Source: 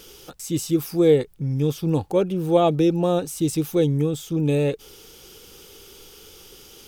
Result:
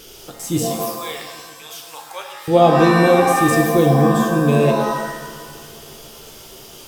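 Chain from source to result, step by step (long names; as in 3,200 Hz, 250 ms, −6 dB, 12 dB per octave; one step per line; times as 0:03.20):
0:00.62–0:02.48: high-pass filter 950 Hz 24 dB per octave
feedback echo with a low-pass in the loop 137 ms, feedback 81%, low-pass 3,900 Hz, level −22 dB
reverb with rising layers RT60 1.1 s, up +7 semitones, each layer −2 dB, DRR 3.5 dB
level +3.5 dB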